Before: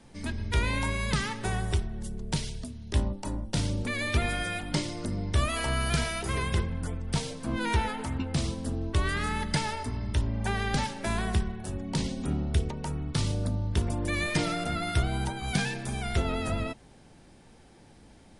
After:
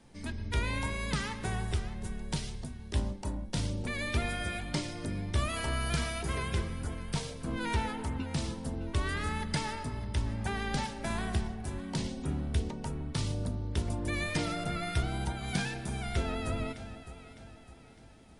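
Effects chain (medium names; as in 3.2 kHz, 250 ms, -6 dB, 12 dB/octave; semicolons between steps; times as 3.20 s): echo whose repeats swap between lows and highs 304 ms, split 820 Hz, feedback 67%, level -10 dB; trim -4.5 dB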